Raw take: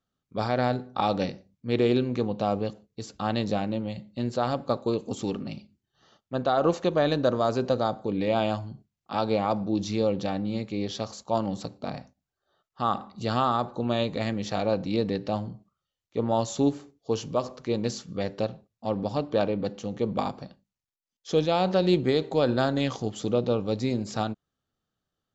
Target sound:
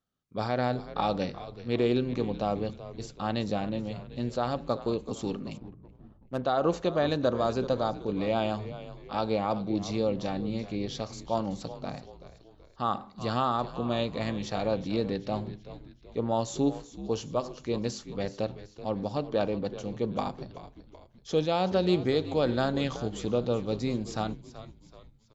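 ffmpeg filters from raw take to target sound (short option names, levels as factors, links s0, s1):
-filter_complex "[0:a]asplit=5[s0][s1][s2][s3][s4];[s1]adelay=379,afreqshift=-81,volume=0.2[s5];[s2]adelay=758,afreqshift=-162,volume=0.0923[s6];[s3]adelay=1137,afreqshift=-243,volume=0.0422[s7];[s4]adelay=1516,afreqshift=-324,volume=0.0195[s8];[s0][s5][s6][s7][s8]amix=inputs=5:normalize=0,asettb=1/sr,asplit=3[s9][s10][s11];[s9]atrim=end=5.574[s12];[s10]atrim=start=5.57:end=6.44,asetpts=PTS-STARTPTS,afade=t=in:d=0.004:c=qsin,afade=t=out:st=0.866:d=0.004:c=qsin,adynamicsmooth=sensitivity=8:basefreq=800[s13];[s11]atrim=start=6.436[s14];[s12][s13]acrossfade=d=0.004:c1=hsin:c2=qsin[s15];[s15][s14]acrossfade=d=0.004:c1=qsin:c2=hsin,volume=0.708"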